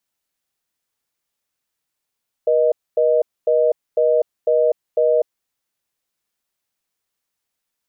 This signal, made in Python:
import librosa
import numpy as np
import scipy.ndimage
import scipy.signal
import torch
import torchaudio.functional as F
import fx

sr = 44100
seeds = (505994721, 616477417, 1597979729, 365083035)

y = fx.call_progress(sr, length_s=2.82, kind='reorder tone', level_db=-15.5)